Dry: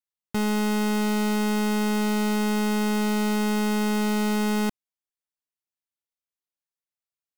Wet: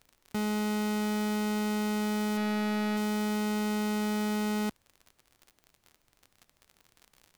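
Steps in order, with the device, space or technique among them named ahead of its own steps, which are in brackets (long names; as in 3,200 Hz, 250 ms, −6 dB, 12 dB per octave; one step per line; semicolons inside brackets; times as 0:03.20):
high-pass filter 62 Hz
0:02.37–0:02.97: high shelf with overshoot 3,500 Hz −12.5 dB, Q 1.5
record under a worn stylus (stylus tracing distortion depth 0.25 ms; surface crackle 47 per second −34 dBFS; pink noise bed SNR 41 dB)
level −6 dB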